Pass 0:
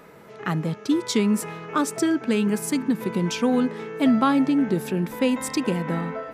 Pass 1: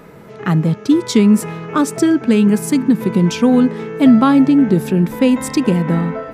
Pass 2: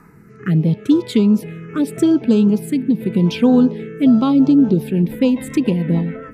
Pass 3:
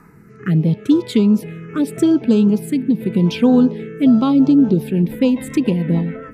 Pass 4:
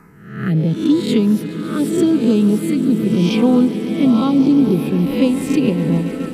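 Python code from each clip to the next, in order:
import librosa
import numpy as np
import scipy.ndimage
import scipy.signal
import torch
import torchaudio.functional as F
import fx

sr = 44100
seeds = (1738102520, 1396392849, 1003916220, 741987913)

y1 = fx.low_shelf(x, sr, hz=290.0, db=9.5)
y1 = y1 * librosa.db_to_amplitude(4.5)
y2 = fx.rotary_switch(y1, sr, hz=0.8, then_hz=7.0, switch_at_s=3.87)
y2 = fx.env_phaser(y2, sr, low_hz=560.0, high_hz=2100.0, full_db=-8.5)
y3 = y2
y4 = fx.spec_swells(y3, sr, rise_s=0.67)
y4 = fx.echo_swell(y4, sr, ms=140, loudest=5, wet_db=-17.0)
y4 = y4 * librosa.db_to_amplitude(-1.5)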